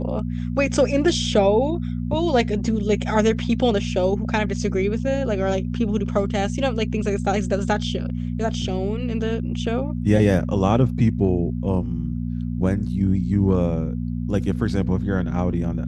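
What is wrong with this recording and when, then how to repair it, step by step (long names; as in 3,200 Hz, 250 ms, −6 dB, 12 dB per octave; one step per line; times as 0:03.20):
mains hum 60 Hz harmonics 4 −26 dBFS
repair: hum removal 60 Hz, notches 4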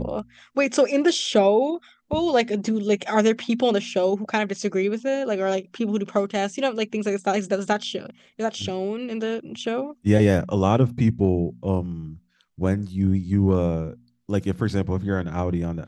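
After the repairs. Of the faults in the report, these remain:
none of them is left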